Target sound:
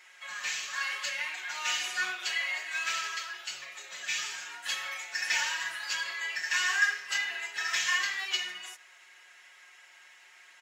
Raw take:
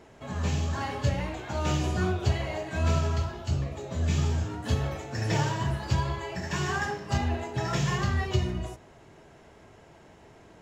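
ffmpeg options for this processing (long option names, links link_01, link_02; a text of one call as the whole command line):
ffmpeg -i in.wav -af "highpass=frequency=1900:width_type=q:width=2,highshelf=frequency=5300:gain=4.5,aecho=1:1:5.5:0.89" out.wav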